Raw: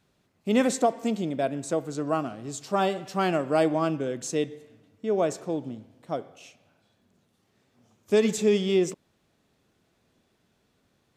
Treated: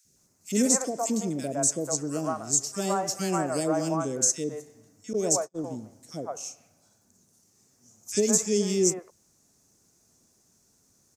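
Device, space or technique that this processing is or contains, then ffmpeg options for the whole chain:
over-bright horn tweeter: -filter_complex "[0:a]highshelf=f=4600:t=q:w=3:g=11.5,alimiter=limit=0.266:level=0:latency=1:release=221,acrossover=split=560|1800[s0][s1][s2];[s0]adelay=50[s3];[s1]adelay=160[s4];[s3][s4][s2]amix=inputs=3:normalize=0,asettb=1/sr,asplit=3[s5][s6][s7];[s5]atrim=end=5.134[s8];[s6]atrim=start=5.13:end=5.64,asetpts=PTS-STARTPTS,afade=t=in:d=0.004:c=qsin,afade=t=out:st=0.506:d=0.004:c=qsin,agate=range=0.01:threshold=0.0355:ratio=16:detection=peak[s9];[s7]atrim=start=5.636[s10];[s8][s9]acrossfade=d=0.004:c1=hsin:c2=qsin[s11];[s11][s10]acrossfade=d=0.004:c1=qsin:c2=hsin"

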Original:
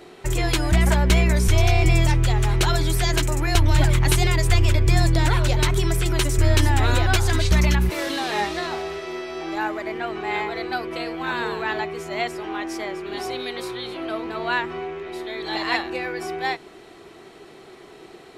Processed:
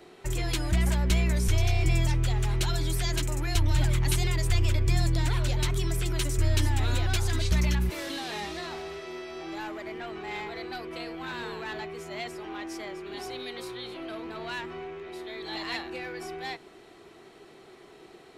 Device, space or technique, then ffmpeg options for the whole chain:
one-band saturation: -filter_complex "[0:a]acrossover=split=290|2300[s0][s1][s2];[s1]asoftclip=type=tanh:threshold=0.0355[s3];[s0][s3][s2]amix=inputs=3:normalize=0,volume=0.473"

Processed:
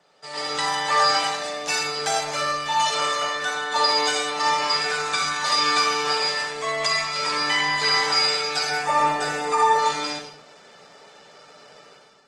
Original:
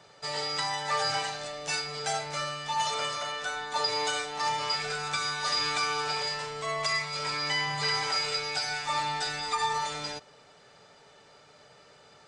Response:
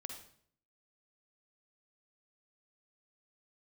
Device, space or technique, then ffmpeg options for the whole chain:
far-field microphone of a smart speaker: -filter_complex "[0:a]asettb=1/sr,asplit=3[s0][s1][s2];[s0]atrim=end=8.704[s3];[s1]atrim=start=8.7:end=9.79,asetpts=PTS-STARTPTS,afade=t=in:d=0.004:c=qsin,afade=t=out:st=1.086:d=0.004:c=qsin,equalizer=f=125:t=o:w=1:g=5,equalizer=f=500:t=o:w=1:g=9,equalizer=f=4000:t=o:w=1:g=-10[s4];[s2]atrim=start=9.786[s5];[s3][s4]acrossfade=d=0.004:c1=hsin:c2=qsin[s6];[s6][s5]acrossfade=d=0.004:c1=qsin:c2=hsin[s7];[1:a]atrim=start_sample=2205[s8];[s7][s8]afir=irnorm=-1:irlink=0,highpass=f=160:w=0.5412,highpass=f=160:w=1.3066,dynaudnorm=f=110:g=7:m=3.55" -ar 48000 -c:a libopus -b:a 20k

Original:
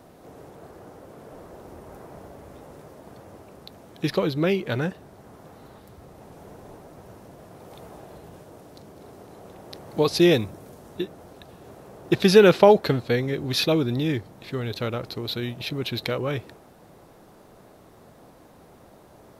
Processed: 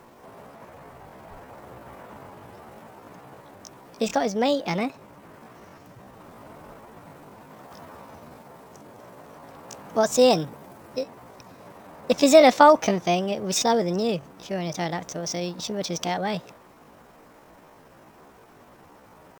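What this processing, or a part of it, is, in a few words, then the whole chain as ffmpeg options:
chipmunk voice: -filter_complex "[0:a]asetrate=64194,aresample=44100,atempo=0.686977,asplit=3[s0][s1][s2];[s0]afade=t=out:st=0.75:d=0.02[s3];[s1]asubboost=boost=7:cutoff=130,afade=t=in:st=0.75:d=0.02,afade=t=out:st=1.38:d=0.02[s4];[s2]afade=t=in:st=1.38:d=0.02[s5];[s3][s4][s5]amix=inputs=3:normalize=0"

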